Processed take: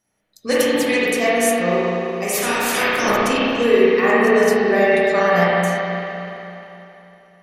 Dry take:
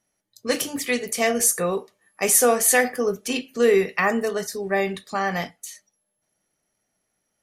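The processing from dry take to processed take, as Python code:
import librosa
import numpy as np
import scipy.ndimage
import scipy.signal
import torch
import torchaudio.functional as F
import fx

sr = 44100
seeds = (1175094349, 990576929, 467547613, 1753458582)

y = fx.spec_clip(x, sr, under_db=27, at=(2.32, 3.16), fade=0.02)
y = fx.rider(y, sr, range_db=10, speed_s=0.5)
y = fx.rev_spring(y, sr, rt60_s=3.2, pass_ms=(34, 50), chirp_ms=55, drr_db=-8.5)
y = y * librosa.db_to_amplitude(-3.0)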